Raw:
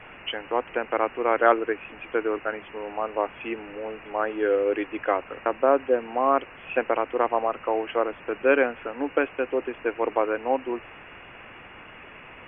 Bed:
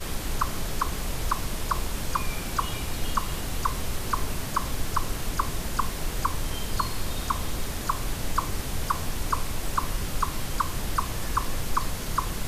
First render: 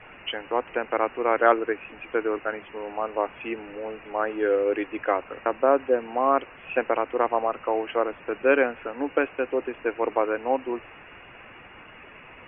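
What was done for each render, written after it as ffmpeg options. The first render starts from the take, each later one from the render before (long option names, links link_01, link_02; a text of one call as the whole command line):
ffmpeg -i in.wav -af "afftdn=noise_reduction=6:noise_floor=-46" out.wav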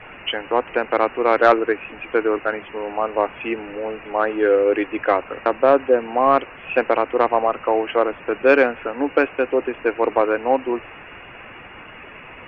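ffmpeg -i in.wav -af "acontrast=75" out.wav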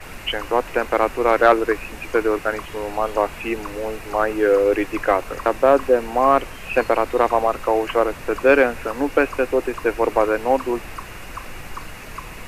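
ffmpeg -i in.wav -i bed.wav -filter_complex "[1:a]volume=-8dB[link_01];[0:a][link_01]amix=inputs=2:normalize=0" out.wav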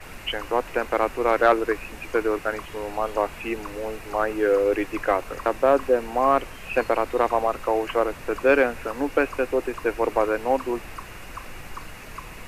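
ffmpeg -i in.wav -af "volume=-4dB" out.wav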